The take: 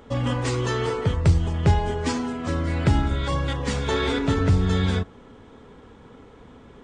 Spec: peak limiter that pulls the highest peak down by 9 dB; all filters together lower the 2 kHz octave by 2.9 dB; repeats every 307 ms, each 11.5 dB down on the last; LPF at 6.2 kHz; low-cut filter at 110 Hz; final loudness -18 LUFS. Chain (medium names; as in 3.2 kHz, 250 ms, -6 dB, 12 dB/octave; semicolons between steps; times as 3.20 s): high-pass 110 Hz; low-pass 6.2 kHz; peaking EQ 2 kHz -3.5 dB; peak limiter -17.5 dBFS; feedback delay 307 ms, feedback 27%, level -11.5 dB; trim +9.5 dB